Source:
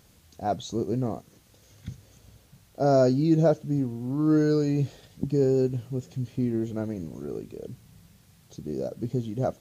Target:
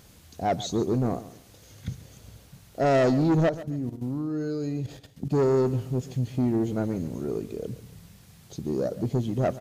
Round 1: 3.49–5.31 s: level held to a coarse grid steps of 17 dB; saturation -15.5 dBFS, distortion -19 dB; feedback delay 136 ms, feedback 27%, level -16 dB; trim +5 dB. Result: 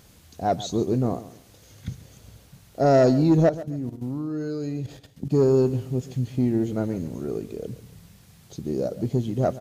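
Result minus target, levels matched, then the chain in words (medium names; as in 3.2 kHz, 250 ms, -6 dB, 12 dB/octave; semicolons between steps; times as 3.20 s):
saturation: distortion -9 dB
3.49–5.31 s: level held to a coarse grid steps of 17 dB; saturation -23 dBFS, distortion -10 dB; feedback delay 136 ms, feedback 27%, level -16 dB; trim +5 dB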